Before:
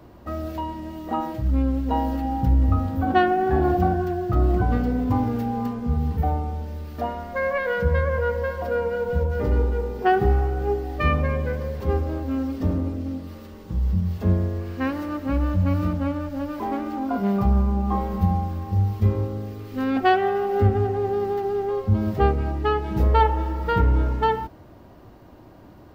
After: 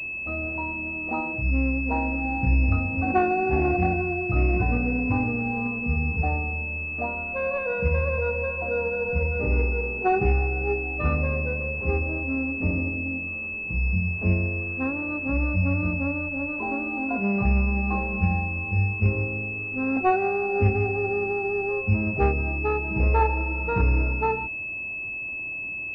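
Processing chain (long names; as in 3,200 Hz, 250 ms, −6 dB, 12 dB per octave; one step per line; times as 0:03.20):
switching amplifier with a slow clock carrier 2,600 Hz
level −2.5 dB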